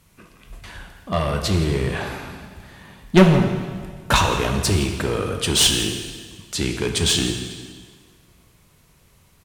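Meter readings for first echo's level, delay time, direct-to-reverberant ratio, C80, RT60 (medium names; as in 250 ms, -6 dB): -16.0 dB, 169 ms, 3.5 dB, 7.0 dB, 1.7 s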